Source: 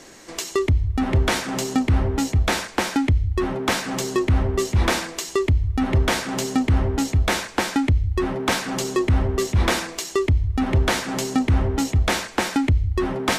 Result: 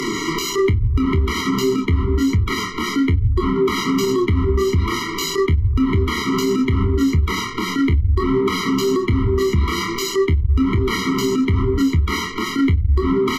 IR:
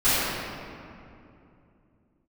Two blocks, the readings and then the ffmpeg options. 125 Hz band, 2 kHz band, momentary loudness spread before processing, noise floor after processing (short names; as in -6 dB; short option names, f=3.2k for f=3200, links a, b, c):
+3.0 dB, +0.5 dB, 4 LU, -26 dBFS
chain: -filter_complex "[0:a]equalizer=f=8.5k:w=1.7:g=-15,flanger=delay=7.5:depth=7.3:regen=26:speed=1.2:shape=triangular,acrossover=split=120[a][b];[b]acompressor=mode=upward:threshold=-30dB:ratio=2.5[c];[a][c]amix=inputs=2:normalize=0,aecho=1:1:26|44:0.596|0.237,anlmdn=0.1,acompressor=threshold=-31dB:ratio=5,alimiter=level_in=27dB:limit=-1dB:release=50:level=0:latency=1,afftfilt=real='re*eq(mod(floor(b*sr/1024/470),2),0)':imag='im*eq(mod(floor(b*sr/1024/470),2),0)':win_size=1024:overlap=0.75,volume=-8dB"